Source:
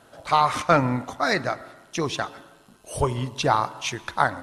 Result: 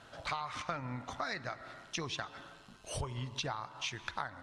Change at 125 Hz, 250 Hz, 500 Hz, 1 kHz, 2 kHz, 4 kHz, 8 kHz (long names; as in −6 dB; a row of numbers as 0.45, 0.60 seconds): −13.5, −17.5, −19.0, −17.5, −13.0, −9.0, −10.0 decibels